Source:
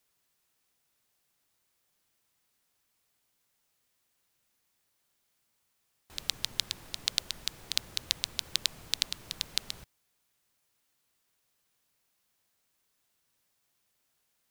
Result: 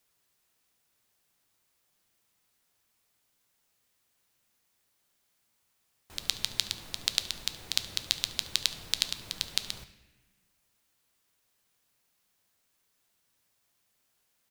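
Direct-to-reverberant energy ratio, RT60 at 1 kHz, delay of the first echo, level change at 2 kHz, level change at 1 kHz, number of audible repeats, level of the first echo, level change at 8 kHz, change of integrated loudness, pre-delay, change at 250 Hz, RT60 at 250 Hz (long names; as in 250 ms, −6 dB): 10.5 dB, 1.1 s, 71 ms, +2.0 dB, +2.0 dB, 1, −19.5 dB, +2.0 dB, +1.5 dB, 9 ms, +2.0 dB, 1.9 s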